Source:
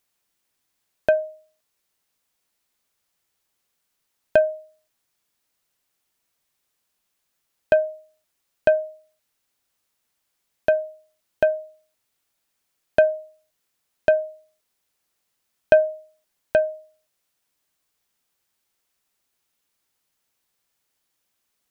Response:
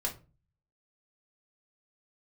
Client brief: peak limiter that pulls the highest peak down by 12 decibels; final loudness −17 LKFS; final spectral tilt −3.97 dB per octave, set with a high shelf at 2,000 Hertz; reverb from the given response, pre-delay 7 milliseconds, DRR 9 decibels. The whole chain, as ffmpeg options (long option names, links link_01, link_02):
-filter_complex "[0:a]highshelf=frequency=2000:gain=-5,alimiter=limit=-15dB:level=0:latency=1,asplit=2[link_01][link_02];[1:a]atrim=start_sample=2205,adelay=7[link_03];[link_02][link_03]afir=irnorm=-1:irlink=0,volume=-12.5dB[link_04];[link_01][link_04]amix=inputs=2:normalize=0,volume=10dB"